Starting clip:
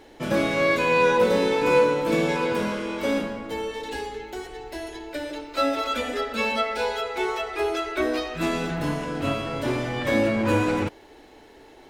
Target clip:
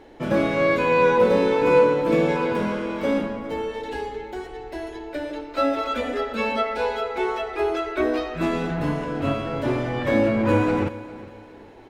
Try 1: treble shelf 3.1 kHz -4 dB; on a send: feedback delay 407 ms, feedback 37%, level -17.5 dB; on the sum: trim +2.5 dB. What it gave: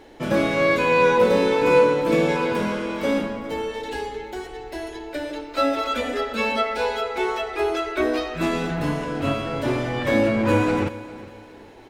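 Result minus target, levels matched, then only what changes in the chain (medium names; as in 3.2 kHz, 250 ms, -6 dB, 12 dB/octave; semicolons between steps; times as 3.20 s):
8 kHz band +6.0 dB
change: treble shelf 3.1 kHz -12 dB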